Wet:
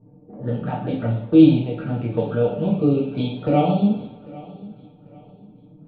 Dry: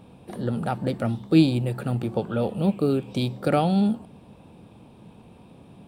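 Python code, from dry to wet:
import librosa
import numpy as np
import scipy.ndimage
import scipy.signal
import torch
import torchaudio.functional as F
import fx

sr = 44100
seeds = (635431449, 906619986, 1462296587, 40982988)

p1 = scipy.signal.sosfilt(scipy.signal.butter(4, 3100.0, 'lowpass', fs=sr, output='sos'), x)
p2 = fx.env_flanger(p1, sr, rest_ms=8.3, full_db=-22.0)
p3 = p2 + 0.49 * np.pad(p2, (int(6.8 * sr / 1000.0), 0))[:len(p2)]
p4 = fx.env_lowpass(p3, sr, base_hz=350.0, full_db=-20.5)
p5 = p4 + fx.echo_feedback(p4, sr, ms=795, feedback_pct=33, wet_db=-20.5, dry=0)
p6 = fx.rev_double_slope(p5, sr, seeds[0], early_s=0.59, late_s=3.9, knee_db=-27, drr_db=-5.0)
y = F.gain(torch.from_numpy(p6), -3.0).numpy()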